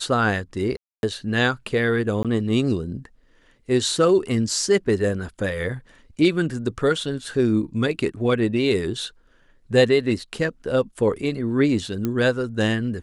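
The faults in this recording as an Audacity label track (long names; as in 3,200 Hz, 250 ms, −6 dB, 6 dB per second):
0.770000	1.030000	drop-out 261 ms
2.230000	2.250000	drop-out 17 ms
12.050000	12.050000	click −12 dBFS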